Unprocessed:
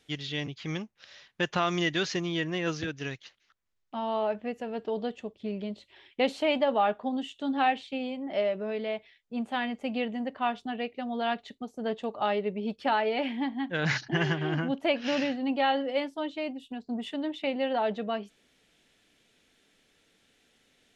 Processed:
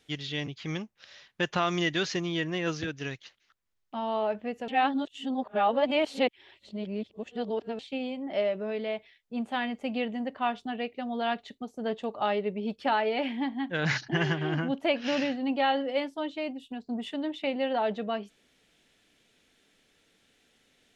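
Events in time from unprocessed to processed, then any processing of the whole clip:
4.68–7.79 reverse

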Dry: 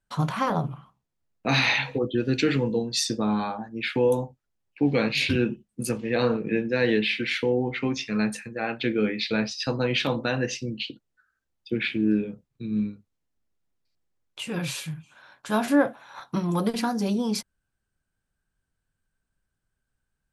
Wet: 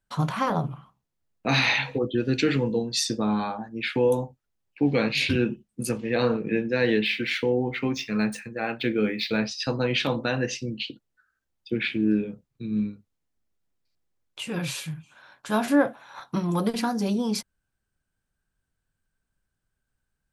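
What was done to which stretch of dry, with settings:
7.05–9.38 median filter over 3 samples

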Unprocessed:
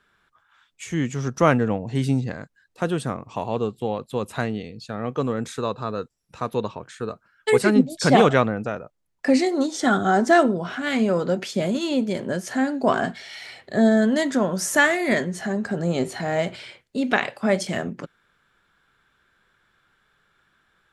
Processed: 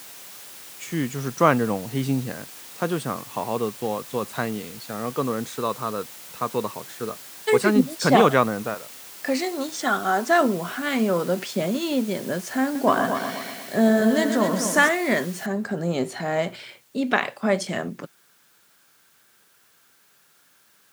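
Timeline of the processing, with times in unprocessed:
8.74–10.41 low shelf 340 Hz -11.5 dB
12.63–14.89 multi-head echo 0.121 s, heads first and second, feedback 49%, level -9.5 dB
15.46 noise floor step -41 dB -59 dB
whole clip: HPF 130 Hz; dynamic EQ 1100 Hz, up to +5 dB, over -40 dBFS, Q 3.5; gain -1 dB

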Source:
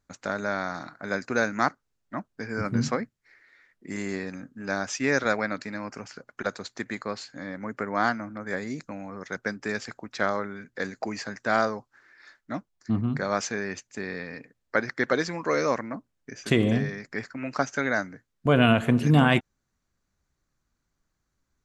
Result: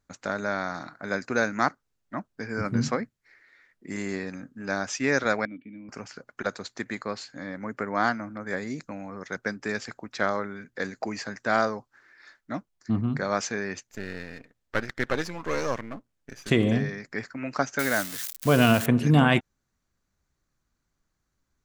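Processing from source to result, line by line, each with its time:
5.45–5.89 vocal tract filter i
13.83–16.49 half-wave gain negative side -12 dB
17.79–18.86 switching spikes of -21 dBFS

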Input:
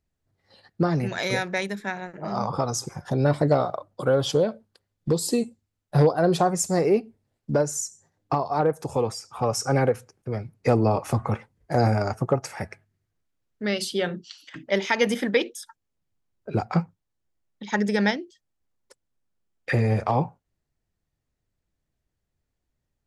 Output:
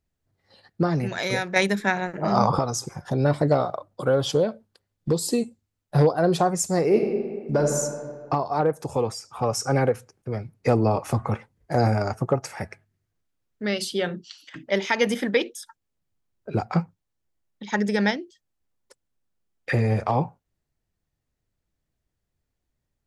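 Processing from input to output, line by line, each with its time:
1.56–2.59 gain +7.5 dB
6.85–7.78 reverb throw, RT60 1.8 s, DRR 1 dB

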